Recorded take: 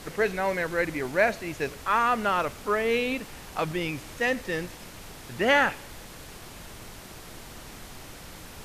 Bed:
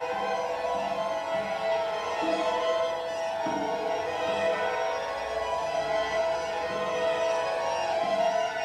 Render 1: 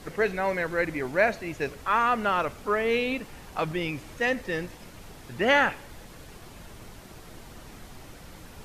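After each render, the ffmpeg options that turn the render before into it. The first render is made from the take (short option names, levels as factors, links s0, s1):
-af "afftdn=nr=6:nf=-45"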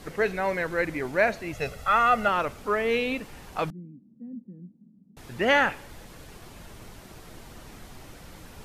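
-filter_complex "[0:a]asettb=1/sr,asplit=3[s0][s1][s2];[s0]atrim=end=1.534[s3];[s1]atrim=start=1.53:end=2.28,asetpts=PTS-STARTPTS,afade=t=in:d=0.004:c=qsin,afade=t=out:st=0.746:d=0.004:c=qsin,aecho=1:1:1.5:0.79,atrim=end_sample=33075[s4];[s2]atrim=start=2.276[s5];[s3][s4]acrossfade=d=0.004:c1=hsin:c2=qsin[s6];[s6][s5]acrossfade=d=0.004:c1=qsin:c2=hsin,asettb=1/sr,asplit=3[s7][s8][s9];[s7]atrim=end=3.704[s10];[s8]atrim=start=3.7:end=5.17,asetpts=PTS-STARTPTS,afade=t=in:d=0.004:c=qsin,afade=t=out:st=1.466:d=0.004:c=qsin,asuperpass=centerf=210:order=4:qfactor=3[s11];[s9]atrim=start=5.166[s12];[s10][s11]acrossfade=d=0.004:c1=hsin:c2=qsin[s13];[s13][s12]acrossfade=d=0.004:c1=qsin:c2=hsin"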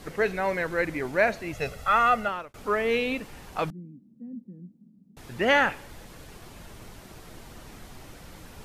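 -filter_complex "[0:a]asplit=2[s0][s1];[s0]atrim=end=2.54,asetpts=PTS-STARTPTS,afade=t=out:st=2.08:d=0.46[s2];[s1]atrim=start=2.54,asetpts=PTS-STARTPTS,afade=t=in:d=0.004:c=hsin[s3];[s2][s3]concat=n=2:v=0:a=1"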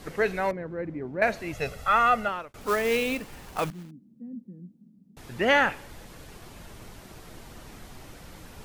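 -filter_complex "[0:a]asettb=1/sr,asplit=3[s0][s1][s2];[s0]atrim=end=0.514[s3];[s1]atrim=start=0.51:end=1.22,asetpts=PTS-STARTPTS,afade=t=in:d=0.004:c=qsin,afade=t=out:st=0.706:d=0.004:c=qsin,bandpass=f=180:t=q:w=0.7[s4];[s2]atrim=start=1.216[s5];[s3][s4]acrossfade=d=0.004:c1=hsin:c2=qsin[s6];[s6][s5]acrossfade=d=0.004:c1=qsin:c2=hsin,asettb=1/sr,asplit=3[s7][s8][s9];[s7]atrim=end=2.614[s10];[s8]atrim=start=2.61:end=3.91,asetpts=PTS-STARTPTS,afade=t=in:d=0.004:c=qsin,afade=t=out:st=1.296:d=0.004:c=qsin,acrusher=bits=3:mode=log:mix=0:aa=0.000001[s11];[s9]atrim=start=3.906[s12];[s10][s11]acrossfade=d=0.004:c1=hsin:c2=qsin[s13];[s13][s12]acrossfade=d=0.004:c1=qsin:c2=hsin"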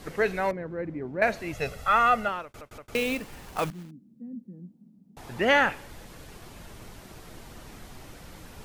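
-filter_complex "[0:a]asettb=1/sr,asplit=3[s0][s1][s2];[s0]atrim=end=4.534[s3];[s1]atrim=start=4.53:end=5.4,asetpts=PTS-STARTPTS,afade=t=in:d=0.004:c=qsin,afade=t=out:st=0.866:d=0.004:c=qsin,equalizer=f=810:t=o:w=0.96:g=8[s4];[s2]atrim=start=5.396[s5];[s3][s4]acrossfade=d=0.004:c1=hsin:c2=qsin[s6];[s6][s5]acrossfade=d=0.004:c1=qsin:c2=hsin,asplit=4[s7][s8][s9][s10];[s7]atrim=end=2.612[s11];[s8]atrim=start=2.438:end=2.612[s12];[s9]atrim=start=2.438:end=2.612[s13];[s10]atrim=start=2.948[s14];[s11][s12]acrossfade=d=0.004:c1=hsin:c2=hsin[s15];[s15][s13]acrossfade=d=0.004:c1=hsin:c2=hsin[s16];[s16][s14]acrossfade=d=0.004:c1=hsin:c2=hsin"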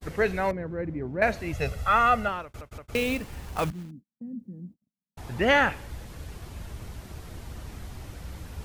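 -af "agate=range=0.00708:threshold=0.00398:ratio=16:detection=peak,equalizer=f=69:t=o:w=1.5:g=14"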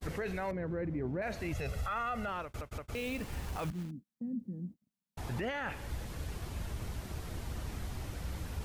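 -af "acompressor=threshold=0.0282:ratio=2,alimiter=level_in=1.68:limit=0.0631:level=0:latency=1:release=22,volume=0.596"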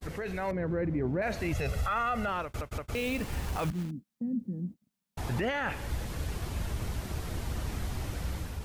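-af "dynaudnorm=f=120:g=7:m=1.88"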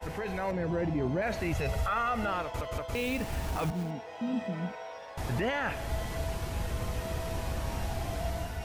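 -filter_complex "[1:a]volume=0.211[s0];[0:a][s0]amix=inputs=2:normalize=0"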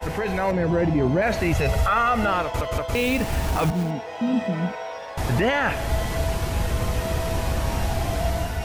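-af "volume=2.99"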